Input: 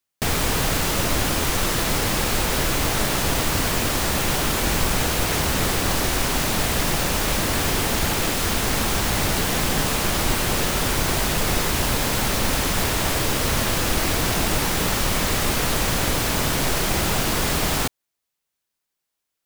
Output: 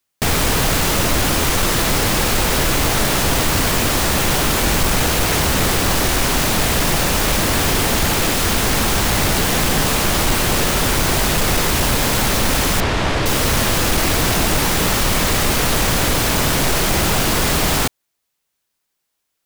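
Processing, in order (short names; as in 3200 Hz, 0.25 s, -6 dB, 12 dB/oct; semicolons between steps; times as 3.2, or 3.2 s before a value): 12.8–13.26 Bessel low-pass 3400 Hz, order 2; soft clip -15 dBFS, distortion -18 dB; gain +6.5 dB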